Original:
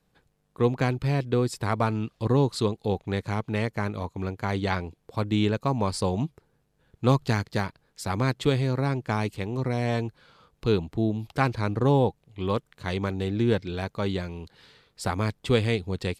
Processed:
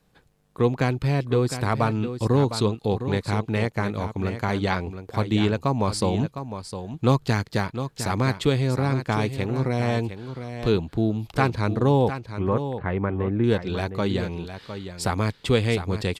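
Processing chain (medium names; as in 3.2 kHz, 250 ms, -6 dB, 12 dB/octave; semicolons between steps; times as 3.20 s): in parallel at -1 dB: compression, threshold -31 dBFS, peak gain reduction 15 dB; 12.08–13.44 s: on the sum: low-pass 2 kHz 24 dB/octave; delay 708 ms -10 dB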